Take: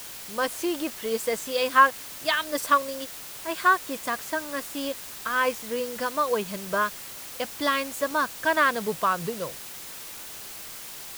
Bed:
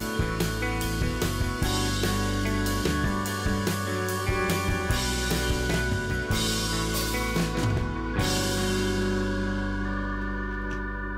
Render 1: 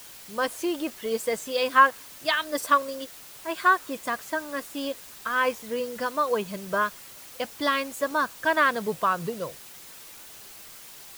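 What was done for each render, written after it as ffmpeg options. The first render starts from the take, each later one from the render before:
-af "afftdn=nr=6:nf=-40"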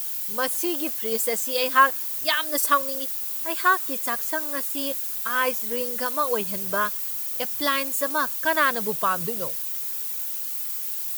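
-af "aemphasis=mode=production:type=50fm"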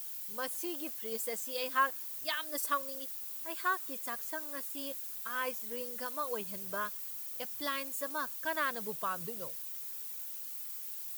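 -af "volume=-12.5dB"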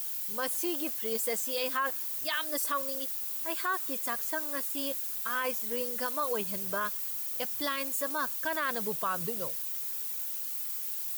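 -af "acontrast=71,alimiter=limit=-21.5dB:level=0:latency=1:release=12"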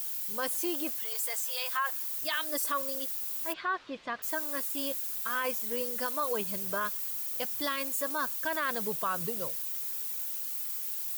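-filter_complex "[0:a]asplit=3[a][b][c];[a]afade=t=out:st=1.02:d=0.02[d];[b]highpass=f=700:w=0.5412,highpass=f=700:w=1.3066,afade=t=in:st=1.02:d=0.02,afade=t=out:st=2.21:d=0.02[e];[c]afade=t=in:st=2.21:d=0.02[f];[d][e][f]amix=inputs=3:normalize=0,asplit=3[g][h][i];[g]afade=t=out:st=3.52:d=0.02[j];[h]lowpass=f=3.9k:w=0.5412,lowpass=f=3.9k:w=1.3066,afade=t=in:st=3.52:d=0.02,afade=t=out:st=4.22:d=0.02[k];[i]afade=t=in:st=4.22:d=0.02[l];[j][k][l]amix=inputs=3:normalize=0"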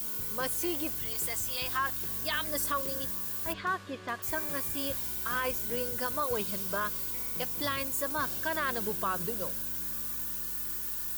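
-filter_complex "[1:a]volume=-20dB[a];[0:a][a]amix=inputs=2:normalize=0"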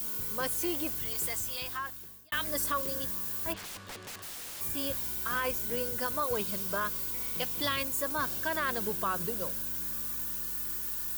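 -filter_complex "[0:a]asettb=1/sr,asplit=3[a][b][c];[a]atrim=end=3.564[d];[b]atrim=start=3.56:end=4.61,asetpts=PTS-STARTPTS,afade=t=in:d=0.004:c=qsin,afade=t=out:st=1.046:d=0.004:c=qsin,aeval=exprs='(mod(70.8*val(0)+1,2)-1)/70.8':c=same[e];[c]atrim=start=4.606[f];[d][e]acrossfade=d=0.004:c1=hsin:c2=qsin[g];[g][f]acrossfade=d=0.004:c1=qsin:c2=hsin,asettb=1/sr,asplit=3[h][i][j];[h]atrim=end=7.214[k];[i]atrim=start=7.21:end=7.83,asetpts=PTS-STARTPTS,afade=t=in:d=0.004:c=qsin,afade=t=out:st=0.616:d=0.004:c=qsin,equalizer=f=3.2k:w=1.5:g=5[l];[j]atrim=start=7.826[m];[k][l]acrossfade=d=0.004:c1=hsin:c2=qsin[n];[n][m]acrossfade=d=0.004:c1=qsin:c2=hsin,asplit=2[o][p];[o]atrim=end=2.32,asetpts=PTS-STARTPTS,afade=t=out:st=1.28:d=1.04[q];[p]atrim=start=2.32,asetpts=PTS-STARTPTS,afade=t=in:d=0.004:c=hsin[r];[q][r]concat=n=2:v=0:a=1"

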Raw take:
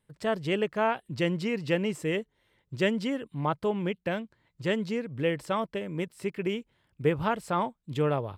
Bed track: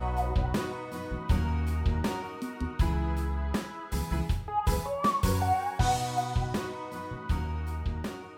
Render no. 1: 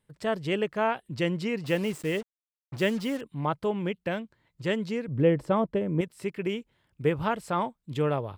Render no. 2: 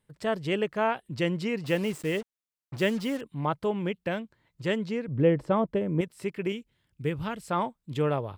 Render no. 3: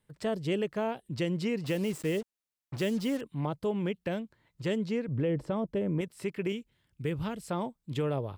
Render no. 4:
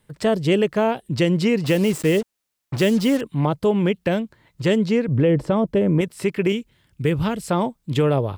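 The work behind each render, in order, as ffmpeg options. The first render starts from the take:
-filter_complex "[0:a]asettb=1/sr,asplit=3[a][b][c];[a]atrim=end=1.644[d];[b]atrim=start=1.64:end=3.21,asetpts=PTS-STARTPTS,afade=t=in:d=0.004:c=qsin,afade=t=out:st=1.566:d=0.004:c=qsin,acrusher=bits=6:mix=0:aa=0.5[e];[c]atrim=start=3.206[f];[d][e]acrossfade=d=0.004:c1=hsin:c2=qsin[g];[g][f]acrossfade=d=0.004:c1=qsin:c2=hsin,asettb=1/sr,asplit=3[h][i][j];[h]atrim=end=5.084[k];[i]atrim=start=5.08:end=6.01,asetpts=PTS-STARTPTS,afade=t=in:d=0.004:c=qsin,afade=t=out:st=0.926:d=0.004:c=qsin,tiltshelf=f=1.2k:g=8[l];[j]atrim=start=6.006[m];[k][l]acrossfade=d=0.004:c1=hsin:c2=qsin[n];[n][m]acrossfade=d=0.004:c1=qsin:c2=hsin"
-filter_complex "[0:a]asettb=1/sr,asplit=3[a][b][c];[a]atrim=end=4.784[d];[b]atrim=start=4.78:end=5.68,asetpts=PTS-STARTPTS,afade=t=in:d=0.004:c=qsin,afade=t=out:st=0.896:d=0.004:c=qsin,highshelf=f=6.3k:g=-7.5[e];[c]atrim=start=5.676[f];[d][e]acrossfade=d=0.004:c1=hsin:c2=qsin[g];[g][f]acrossfade=d=0.004:c1=qsin:c2=hsin,asettb=1/sr,asplit=3[h][i][j];[h]atrim=end=6.524[k];[i]atrim=start=6.52:end=7.51,asetpts=PTS-STARTPTS,afade=t=in:d=0.004:c=qsin,afade=t=out:st=0.986:d=0.004:c=qsin,equalizer=f=780:t=o:w=2.3:g=-9[l];[j]atrim=start=7.506[m];[k][l]acrossfade=d=0.004:c1=hsin:c2=qsin[n];[n][m]acrossfade=d=0.004:c1=qsin:c2=hsin"
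-filter_complex "[0:a]acrossover=split=650|3600[a][b][c];[a]alimiter=limit=-24dB:level=0:latency=1[d];[b]acompressor=threshold=-41dB:ratio=6[e];[d][e][c]amix=inputs=3:normalize=0"
-af "volume=12dB"

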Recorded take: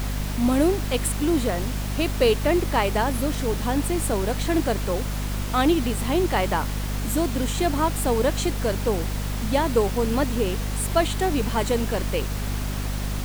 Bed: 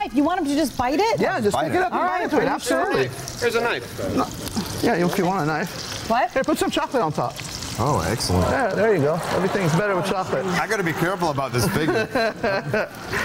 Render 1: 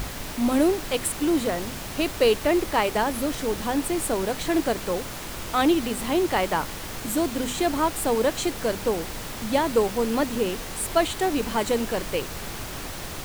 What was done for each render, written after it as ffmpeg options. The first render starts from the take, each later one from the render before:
-af "bandreject=f=50:t=h:w=6,bandreject=f=100:t=h:w=6,bandreject=f=150:t=h:w=6,bandreject=f=200:t=h:w=6,bandreject=f=250:t=h:w=6"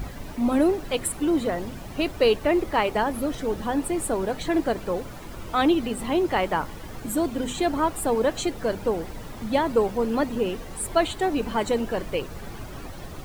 -af "afftdn=nr=12:nf=-35"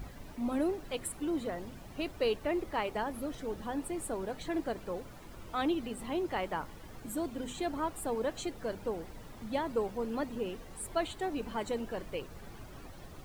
-af "volume=-11dB"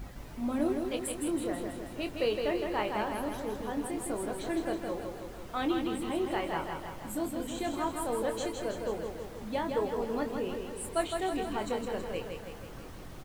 -filter_complex "[0:a]asplit=2[a][b];[b]adelay=24,volume=-7.5dB[c];[a][c]amix=inputs=2:normalize=0,aecho=1:1:162|324|486|648|810|972|1134|1296:0.562|0.332|0.196|0.115|0.0681|0.0402|0.0237|0.014"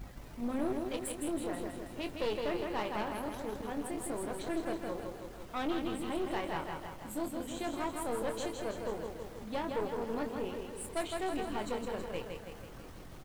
-af "aeval=exprs='(tanh(25.1*val(0)+0.65)-tanh(0.65))/25.1':c=same"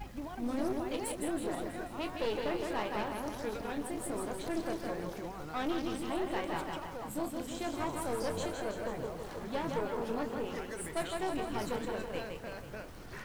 -filter_complex "[1:a]volume=-23.5dB[a];[0:a][a]amix=inputs=2:normalize=0"

